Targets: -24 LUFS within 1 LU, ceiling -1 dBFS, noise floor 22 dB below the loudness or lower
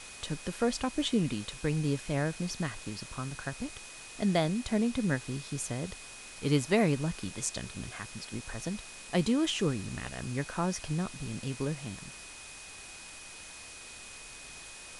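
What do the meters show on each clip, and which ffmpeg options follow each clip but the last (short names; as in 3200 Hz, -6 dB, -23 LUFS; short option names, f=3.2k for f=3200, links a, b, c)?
steady tone 2500 Hz; tone level -51 dBFS; noise floor -48 dBFS; noise floor target -55 dBFS; loudness -33.0 LUFS; peak -12.5 dBFS; loudness target -24.0 LUFS
-> -af "bandreject=f=2.5k:w=30"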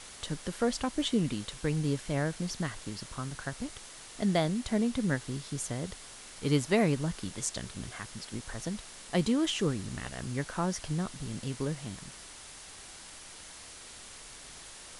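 steady tone none; noise floor -49 dBFS; noise floor target -55 dBFS
-> -af "afftdn=nr=6:nf=-49"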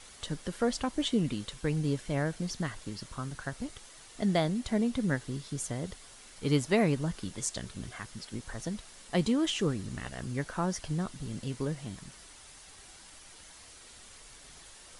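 noise floor -53 dBFS; noise floor target -55 dBFS
-> -af "afftdn=nr=6:nf=-53"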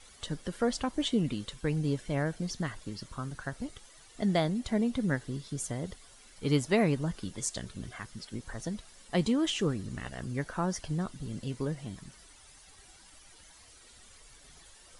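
noise floor -56 dBFS; loudness -33.0 LUFS; peak -13.0 dBFS; loudness target -24.0 LUFS
-> -af "volume=9dB"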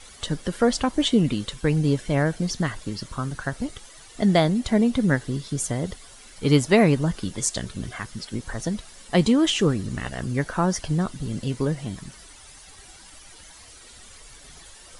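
loudness -24.0 LUFS; peak -4.0 dBFS; noise floor -47 dBFS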